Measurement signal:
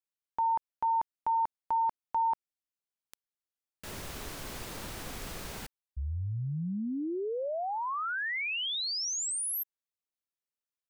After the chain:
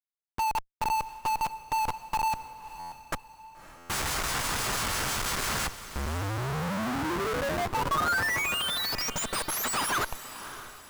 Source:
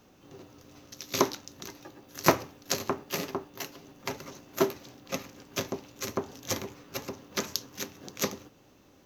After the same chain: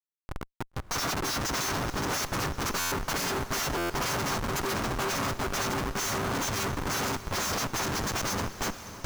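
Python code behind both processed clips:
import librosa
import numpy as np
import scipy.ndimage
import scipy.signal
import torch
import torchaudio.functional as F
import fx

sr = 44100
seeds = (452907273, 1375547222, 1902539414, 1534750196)

y = fx.freq_snap(x, sr, grid_st=2)
y = scipy.signal.sosfilt(scipy.signal.butter(2, 10000.0, 'lowpass', fs=sr, output='sos'), y)
y = fx.hum_notches(y, sr, base_hz=60, count=5)
y = fx.rotary(y, sr, hz=6.0)
y = fx.bass_treble(y, sr, bass_db=11, treble_db=11)
y = fx.echo_feedback(y, sr, ms=416, feedback_pct=46, wet_db=-17.0)
y = fx.over_compress(y, sr, threshold_db=-27.0, ratio=-0.5)
y = fx.schmitt(y, sr, flips_db=-33.5)
y = fx.peak_eq(y, sr, hz=1200.0, db=8.5, octaves=1.5)
y = fx.echo_diffused(y, sr, ms=577, feedback_pct=42, wet_db=-13.0)
y = fx.buffer_glitch(y, sr, at_s=(2.79, 3.77), block=512, repeats=10)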